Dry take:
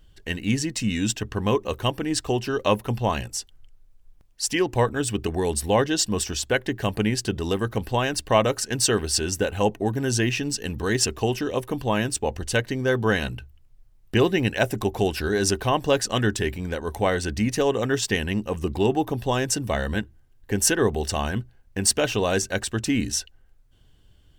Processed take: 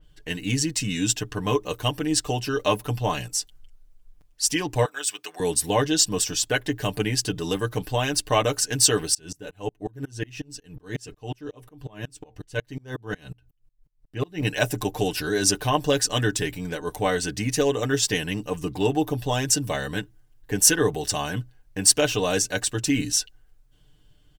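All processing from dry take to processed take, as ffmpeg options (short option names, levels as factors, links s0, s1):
-filter_complex "[0:a]asettb=1/sr,asplit=3[s0][s1][s2];[s0]atrim=end=4.854[s3];[s1]atrim=start=4.85:end=5.4,asetpts=PTS-STARTPTS,afade=t=in:d=0.004:c=qsin,afade=t=out:st=0.546:d=0.004:c=qsin,highpass=1000,equalizer=f=11000:w=3.4:g=-6[s4];[s2]atrim=start=5.396[s5];[s3][s4]acrossfade=d=0.004:c1=hsin:c2=qsin[s6];[s6][s5]acrossfade=d=0.004:c1=qsin:c2=hsin,asettb=1/sr,asplit=3[s7][s8][s9];[s7]atrim=end=9.144[s10];[s8]atrim=start=9.14:end=14.42,asetpts=PTS-STARTPTS,afade=t=in:d=0.004:c=qsin,afade=t=out:st=5.276:d=0.004:c=qsin,lowshelf=f=400:g=5,flanger=delay=1:depth=2.5:regen=-80:speed=1.4:shape=triangular,aeval=exprs='val(0)*pow(10,-32*if(lt(mod(-5.5*n/s,1),2*abs(-5.5)/1000),1-mod(-5.5*n/s,1)/(2*abs(-5.5)/1000),(mod(-5.5*n/s,1)-2*abs(-5.5)/1000)/(1-2*abs(-5.5)/1000))/20)':c=same[s11];[s9]atrim=start=14.416[s12];[s10][s11]acrossfade=d=0.004:c1=hsin:c2=qsin[s13];[s13][s12]acrossfade=d=0.004:c1=qsin:c2=hsin,aecho=1:1:6.7:0.75,adynamicequalizer=threshold=0.0126:dfrequency=3500:dqfactor=0.7:tfrequency=3500:tqfactor=0.7:attack=5:release=100:ratio=0.375:range=3:mode=boostabove:tftype=highshelf,volume=0.708"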